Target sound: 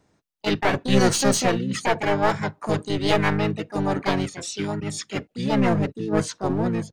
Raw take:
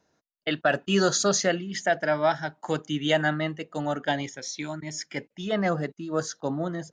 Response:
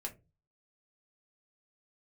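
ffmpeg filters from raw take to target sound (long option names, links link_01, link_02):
-filter_complex "[0:a]lowshelf=frequency=210:gain=10.5,aeval=exprs='clip(val(0),-1,0.0631)':channel_layout=same,asplit=3[link_01][link_02][link_03];[link_02]asetrate=29433,aresample=44100,atempo=1.49831,volume=-5dB[link_04];[link_03]asetrate=58866,aresample=44100,atempo=0.749154,volume=-2dB[link_05];[link_01][link_04][link_05]amix=inputs=3:normalize=0"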